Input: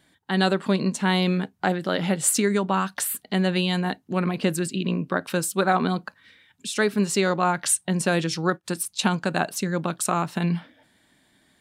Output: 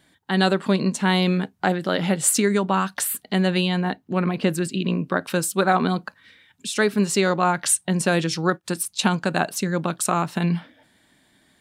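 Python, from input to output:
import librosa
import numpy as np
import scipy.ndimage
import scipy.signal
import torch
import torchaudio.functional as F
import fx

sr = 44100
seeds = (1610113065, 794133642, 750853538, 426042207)

y = fx.peak_eq(x, sr, hz=9400.0, db=fx.line((3.67, -11.0), (4.72, -3.0)), octaves=1.9, at=(3.67, 4.72), fade=0.02)
y = y * librosa.db_to_amplitude(2.0)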